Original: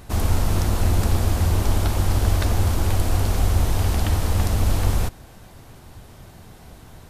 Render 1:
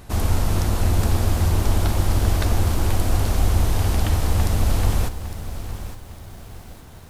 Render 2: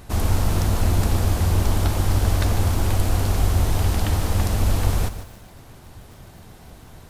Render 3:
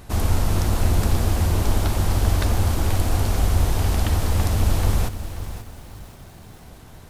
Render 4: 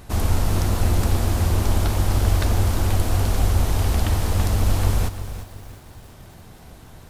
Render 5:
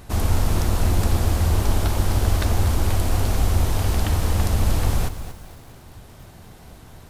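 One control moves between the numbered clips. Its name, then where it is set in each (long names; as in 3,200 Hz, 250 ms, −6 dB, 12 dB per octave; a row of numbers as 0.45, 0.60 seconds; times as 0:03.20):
feedback echo at a low word length, delay time: 857, 149, 533, 346, 236 milliseconds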